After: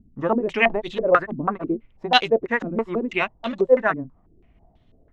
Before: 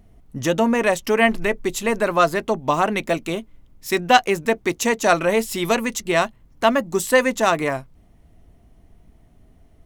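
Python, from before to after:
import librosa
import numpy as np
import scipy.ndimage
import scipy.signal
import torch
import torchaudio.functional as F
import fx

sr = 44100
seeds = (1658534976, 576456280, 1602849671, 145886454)

y = fx.stretch_grains(x, sr, factor=0.52, grain_ms=127.0)
y = fx.filter_held_lowpass(y, sr, hz=6.1, low_hz=250.0, high_hz=3600.0)
y = F.gain(torch.from_numpy(y), -4.5).numpy()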